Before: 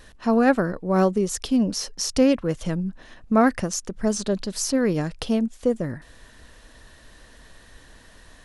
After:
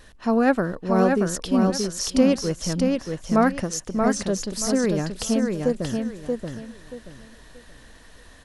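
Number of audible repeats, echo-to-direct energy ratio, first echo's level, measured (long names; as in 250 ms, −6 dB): 3, −3.5 dB, −4.0 dB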